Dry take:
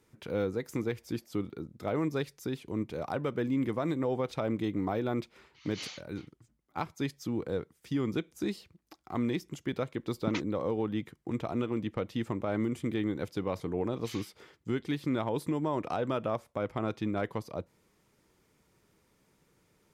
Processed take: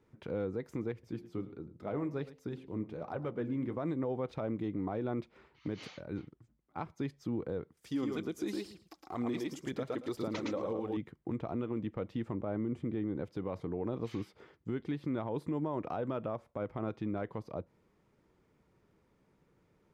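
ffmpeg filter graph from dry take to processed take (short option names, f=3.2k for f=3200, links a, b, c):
-filter_complex "[0:a]asettb=1/sr,asplit=3[a][b][c];[a]atrim=end=0.924[d];[b]atrim=start=0.92:end=3.77,asetpts=PTS-STARTPTS,afade=t=in:d=0.004:c=qsin,afade=t=out:st=2.846:d=0.004:c=qsin,flanger=delay=0.5:depth=9:regen=-59:speed=1.3:shape=triangular,bandreject=f=87.82:t=h:w=4,bandreject=f=175.64:t=h:w=4,bandreject=f=263.46:t=h:w=4,bandreject=f=351.28:t=h:w=4,bandreject=f=439.1:t=h:w=4,bandreject=f=526.92:t=h:w=4,bandreject=f=614.74:t=h:w=4,bandreject=f=702.56:t=h:w=4,bandreject=f=790.38:t=h:w=4,bandreject=f=878.2:t=h:w=4,aecho=1:1:109:0.141,atrim=end_sample=125685[e];[c]atrim=start=3.766[f];[d][e]acrossfade=d=0.004:c1=hsin:c2=qsin[g];[g][f]acrossfade=d=0.004:c1=qsin:c2=hsin,asettb=1/sr,asplit=3[h][i][j];[h]atrim=end=7.774[k];[i]atrim=start=7.77:end=10.97,asetpts=PTS-STARTPTS,afade=t=in:d=0.004:c=qsin,afade=t=out:st=3.196:d=0.004:c=qsin,bass=f=250:g=-7,treble=f=4k:g=14,aecho=1:1:112|224|336:0.631|0.101|0.0162,atrim=end_sample=141120,aphaser=in_gain=1:out_gain=1:delay=3.9:decay=0.41:speed=2:type=sinusoidal[l];[j]atrim=start=10.966[m];[k][l]acrossfade=d=0.004:c1=hsin:c2=qsin[n];[n][m]acrossfade=d=0.004:c1=qsin:c2=hsin,asettb=1/sr,asplit=3[o][p][q];[o]atrim=end=12.344[r];[p]atrim=start=12.34:end=13.24,asetpts=PTS-STARTPTS,afade=t=in:d=0.004:c=qsin,afade=t=out:st=0.896:d=0.004:c=qsin,lowpass=11k,tiltshelf=f=1.4k:g=3.5[s];[q]atrim=start=13.236[t];[r][s]acrossfade=d=0.004:c1=hsin:c2=qsin[u];[u][t]acrossfade=d=0.004:c1=qsin:c2=hsin,lowpass=f=1.3k:p=1,alimiter=level_in=2.5dB:limit=-24dB:level=0:latency=1:release=118,volume=-2.5dB"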